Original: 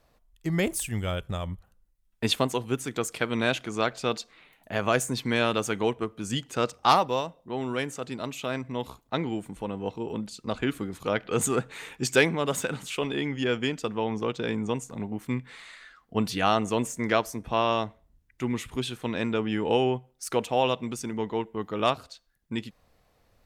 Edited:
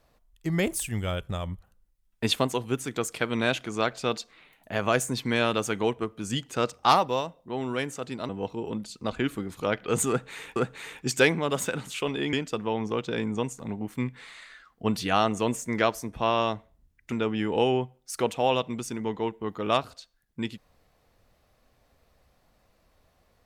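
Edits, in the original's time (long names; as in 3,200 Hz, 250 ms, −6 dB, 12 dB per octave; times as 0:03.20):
0:08.29–0:09.72: remove
0:11.52–0:11.99: repeat, 2 plays
0:13.29–0:13.64: remove
0:18.43–0:19.25: remove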